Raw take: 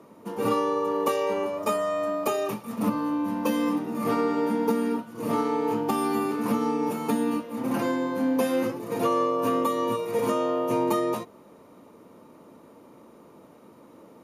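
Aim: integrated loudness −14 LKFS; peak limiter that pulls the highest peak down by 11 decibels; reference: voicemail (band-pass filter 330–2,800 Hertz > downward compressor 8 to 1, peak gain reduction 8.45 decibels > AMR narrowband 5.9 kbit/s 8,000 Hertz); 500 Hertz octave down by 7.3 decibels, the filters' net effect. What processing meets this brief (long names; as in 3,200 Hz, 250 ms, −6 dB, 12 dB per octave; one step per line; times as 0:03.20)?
parametric band 500 Hz −7.5 dB
brickwall limiter −25 dBFS
band-pass filter 330–2,800 Hz
downward compressor 8 to 1, threshold −38 dBFS
level +29.5 dB
AMR narrowband 5.9 kbit/s 8,000 Hz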